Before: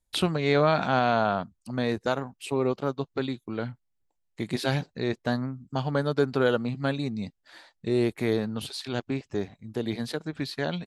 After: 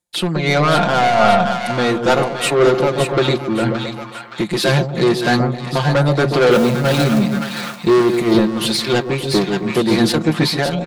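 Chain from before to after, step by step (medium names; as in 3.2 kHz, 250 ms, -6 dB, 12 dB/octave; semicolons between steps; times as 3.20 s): 6.51–7.19 s: jump at every zero crossing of -29.5 dBFS; high-pass 140 Hz 12 dB/octave; comb 5.7 ms, depth 81%; level rider gain up to 11.5 dB; saturation -16.5 dBFS, distortion -8 dB; two-band feedback delay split 850 Hz, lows 132 ms, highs 570 ms, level -6 dB; random flutter of the level, depth 65%; trim +9 dB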